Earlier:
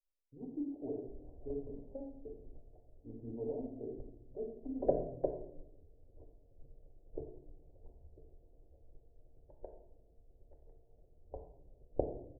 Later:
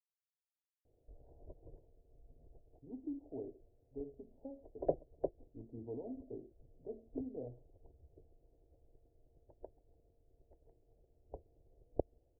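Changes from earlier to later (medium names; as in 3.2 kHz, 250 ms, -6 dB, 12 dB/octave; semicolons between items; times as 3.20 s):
speech: entry +2.50 s; reverb: off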